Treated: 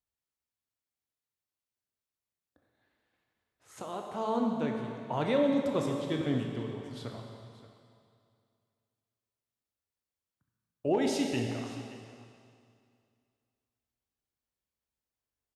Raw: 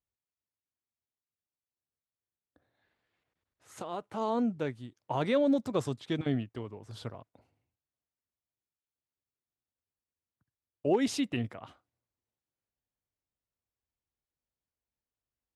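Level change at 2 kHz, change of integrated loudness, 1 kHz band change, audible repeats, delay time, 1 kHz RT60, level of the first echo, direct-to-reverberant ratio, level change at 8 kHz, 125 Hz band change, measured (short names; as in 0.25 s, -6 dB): +1.0 dB, -0.5 dB, +1.0 dB, 1, 0.576 s, 2.4 s, -16.5 dB, 1.5 dB, +0.5 dB, +0.5 dB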